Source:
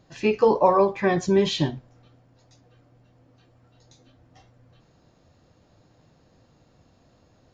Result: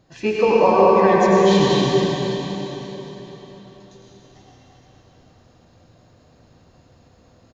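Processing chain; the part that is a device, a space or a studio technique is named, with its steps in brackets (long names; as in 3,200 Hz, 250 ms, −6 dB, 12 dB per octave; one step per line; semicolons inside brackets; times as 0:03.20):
cave (single-tap delay 231 ms −8.5 dB; convolution reverb RT60 4.1 s, pre-delay 82 ms, DRR −5 dB)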